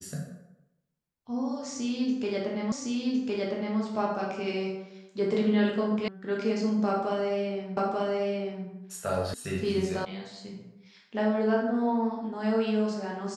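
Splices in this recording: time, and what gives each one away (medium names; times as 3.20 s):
2.72 s: repeat of the last 1.06 s
6.08 s: sound stops dead
7.77 s: repeat of the last 0.89 s
9.34 s: sound stops dead
10.05 s: sound stops dead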